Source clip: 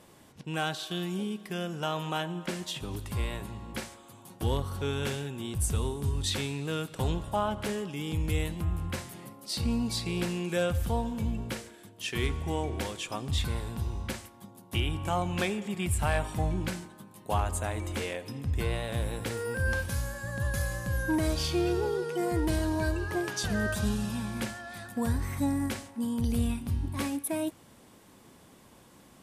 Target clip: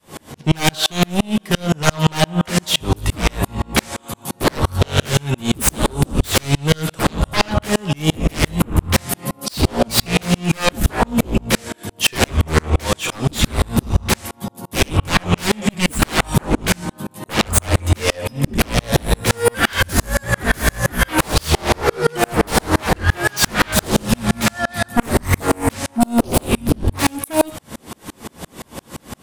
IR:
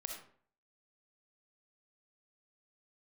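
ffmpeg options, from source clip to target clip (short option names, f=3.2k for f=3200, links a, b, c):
-filter_complex "[0:a]adynamicequalizer=threshold=0.00562:dfrequency=350:dqfactor=1.5:tfrequency=350:tqfactor=1.5:attack=5:release=100:ratio=0.375:range=3:mode=cutabove:tftype=bell,aeval=exprs='0.211*sin(PI/2*7.94*val(0)/0.211)':c=same,asplit=2[a][b];[1:a]atrim=start_sample=2205,atrim=end_sample=3087,adelay=13[c];[b][c]afir=irnorm=-1:irlink=0,volume=-6.5dB[d];[a][d]amix=inputs=2:normalize=0,aeval=exprs='val(0)*pow(10,-37*if(lt(mod(-5.8*n/s,1),2*abs(-5.8)/1000),1-mod(-5.8*n/s,1)/(2*abs(-5.8)/1000),(mod(-5.8*n/s,1)-2*abs(-5.8)/1000)/(1-2*abs(-5.8)/1000))/20)':c=same,volume=7.5dB"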